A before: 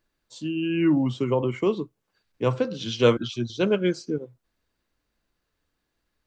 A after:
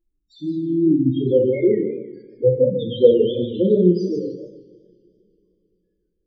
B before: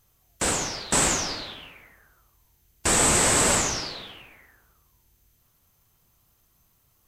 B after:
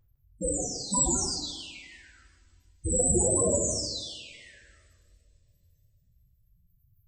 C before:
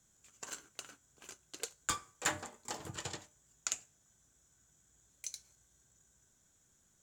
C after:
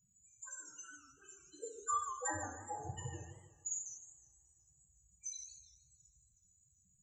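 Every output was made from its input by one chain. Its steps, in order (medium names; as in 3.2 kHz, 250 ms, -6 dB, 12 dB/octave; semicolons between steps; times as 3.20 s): loudest bins only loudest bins 4; two-slope reverb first 0.71 s, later 3.3 s, from -27 dB, DRR -1 dB; modulated delay 154 ms, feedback 36%, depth 191 cents, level -9.5 dB; trim +4.5 dB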